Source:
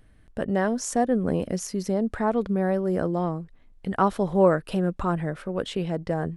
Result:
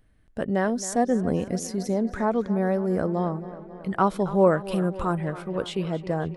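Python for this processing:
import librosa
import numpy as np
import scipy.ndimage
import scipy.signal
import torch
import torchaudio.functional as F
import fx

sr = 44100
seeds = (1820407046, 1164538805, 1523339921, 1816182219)

p1 = fx.noise_reduce_blind(x, sr, reduce_db=6)
p2 = fx.peak_eq(p1, sr, hz=9900.0, db=12.0, octaves=0.34, at=(4.73, 5.18))
y = p2 + fx.echo_tape(p2, sr, ms=272, feedback_pct=73, wet_db=-14.5, lp_hz=4700.0, drive_db=8.0, wow_cents=23, dry=0)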